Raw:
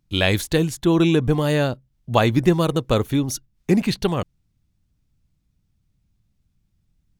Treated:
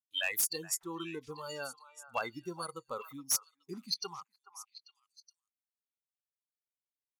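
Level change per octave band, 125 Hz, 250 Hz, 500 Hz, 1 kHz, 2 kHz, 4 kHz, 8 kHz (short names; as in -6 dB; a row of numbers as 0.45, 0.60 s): -32.5, -26.5, -22.0, -15.0, -13.0, -10.5, -1.0 dB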